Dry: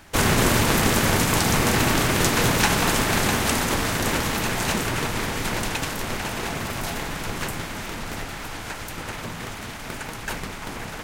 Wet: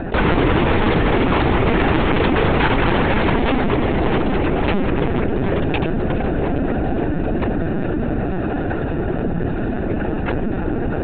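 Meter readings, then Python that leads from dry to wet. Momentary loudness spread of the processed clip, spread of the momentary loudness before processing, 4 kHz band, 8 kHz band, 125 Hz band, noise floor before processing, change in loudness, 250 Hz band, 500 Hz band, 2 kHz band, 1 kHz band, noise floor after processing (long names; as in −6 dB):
6 LU, 14 LU, −4.5 dB, below −40 dB, +6.0 dB, −35 dBFS, +3.5 dB, +8.0 dB, +8.5 dB, +1.0 dB, +4.0 dB, −22 dBFS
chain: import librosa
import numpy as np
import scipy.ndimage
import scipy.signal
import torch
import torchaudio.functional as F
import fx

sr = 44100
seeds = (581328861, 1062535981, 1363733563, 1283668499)

y = fx.wiener(x, sr, points=41)
y = scipy.signal.sosfilt(scipy.signal.butter(4, 140.0, 'highpass', fs=sr, output='sos'), y)
y = fx.air_absorb(y, sr, metres=230.0)
y = fx.echo_feedback(y, sr, ms=407, feedback_pct=44, wet_db=-18)
y = fx.lpc_vocoder(y, sr, seeds[0], excitation='pitch_kept', order=16)
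y = fx.env_flatten(y, sr, amount_pct=70)
y = y * 10.0 ** (6.0 / 20.0)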